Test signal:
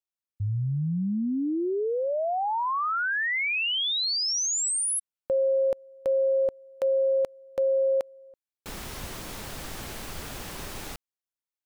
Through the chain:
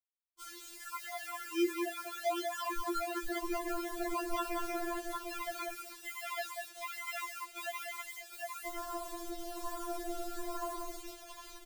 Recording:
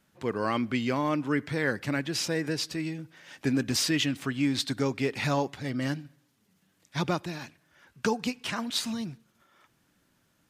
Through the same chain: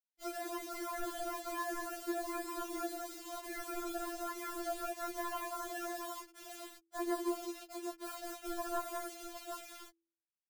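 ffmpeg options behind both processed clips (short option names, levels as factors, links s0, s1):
-filter_complex "[0:a]acompressor=threshold=0.0355:ratio=4:attack=0.28:release=28:knee=6:detection=rms,acrusher=samples=32:mix=1:aa=0.000001:lfo=1:lforange=32:lforate=1.1,equalizer=f=870:t=o:w=2.6:g=7.5,aecho=1:1:191|756:0.531|0.422,afftdn=nr=20:nf=-35,acrossover=split=170[s0][s1];[s1]acompressor=threshold=0.0316:ratio=4:attack=24:release=556:knee=2.83:detection=peak[s2];[s0][s2]amix=inputs=2:normalize=0,acrusher=bits=7:mix=0:aa=0.000001,highshelf=f=2700:g=10,bandreject=f=47.72:t=h:w=4,bandreject=f=95.44:t=h:w=4,bandreject=f=143.16:t=h:w=4,bandreject=f=190.88:t=h:w=4,bandreject=f=238.6:t=h:w=4,bandreject=f=286.32:t=h:w=4,bandreject=f=334.04:t=h:w=4,bandreject=f=381.76:t=h:w=4,bandreject=f=429.48:t=h:w=4,bandreject=f=477.2:t=h:w=4,afftfilt=real='re*4*eq(mod(b,16),0)':imag='im*4*eq(mod(b,16),0)':win_size=2048:overlap=0.75,volume=0.668"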